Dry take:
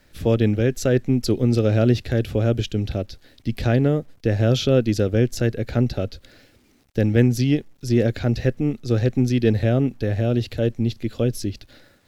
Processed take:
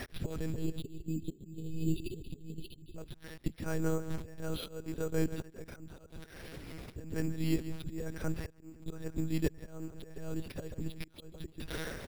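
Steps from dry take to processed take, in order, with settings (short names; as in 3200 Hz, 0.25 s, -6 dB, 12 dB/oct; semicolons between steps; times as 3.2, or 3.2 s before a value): dynamic EQ 1300 Hz, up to +8 dB, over -48 dBFS, Q 3; flipped gate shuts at -19 dBFS, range -26 dB; spectral delete 0.52–2.98, 470–2500 Hz; on a send: feedback echo 0.148 s, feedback 43%, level -16 dB; on the sum: auto swell 0.742 s; monotone LPC vocoder at 8 kHz 160 Hz; careless resampling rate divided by 6×, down none, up hold; gain +17.5 dB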